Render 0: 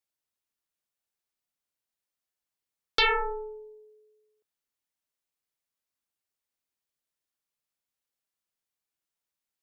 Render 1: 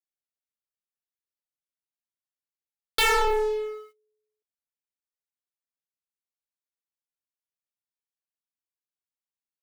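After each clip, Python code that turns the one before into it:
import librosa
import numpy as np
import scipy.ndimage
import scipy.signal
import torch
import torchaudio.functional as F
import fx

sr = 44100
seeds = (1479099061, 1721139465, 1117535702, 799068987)

y = fx.leveller(x, sr, passes=5)
y = y * 10.0 ** (-3.0 / 20.0)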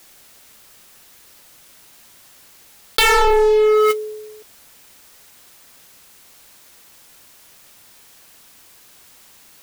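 y = fx.env_flatten(x, sr, amount_pct=100)
y = y * 10.0 ** (7.0 / 20.0)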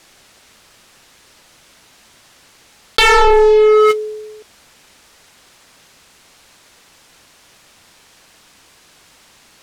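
y = fx.air_absorb(x, sr, metres=54.0)
y = y * 10.0 ** (4.5 / 20.0)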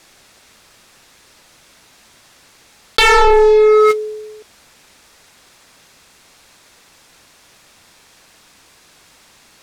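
y = fx.notch(x, sr, hz=3000.0, q=24.0)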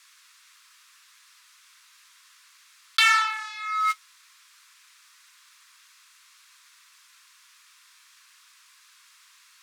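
y = scipy.signal.sosfilt(scipy.signal.butter(16, 1000.0, 'highpass', fs=sr, output='sos'), x)
y = y * 10.0 ** (-6.5 / 20.0)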